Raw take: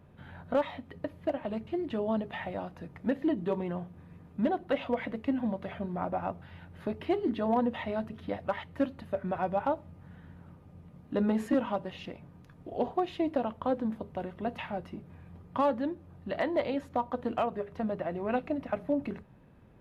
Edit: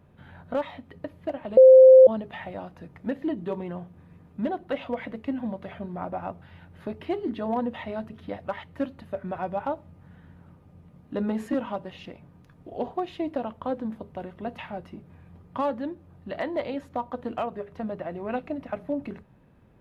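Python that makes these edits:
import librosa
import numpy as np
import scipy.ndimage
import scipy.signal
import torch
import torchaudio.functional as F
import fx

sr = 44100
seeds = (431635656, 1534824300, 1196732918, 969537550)

y = fx.edit(x, sr, fx.bleep(start_s=1.57, length_s=0.5, hz=521.0, db=-7.5), tone=tone)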